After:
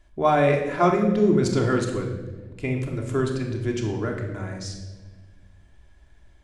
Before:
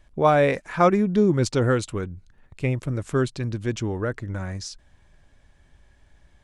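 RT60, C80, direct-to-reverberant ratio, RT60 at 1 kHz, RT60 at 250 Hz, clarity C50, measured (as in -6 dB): 1.4 s, 8.0 dB, 0.0 dB, 1.1 s, 1.8 s, 5.5 dB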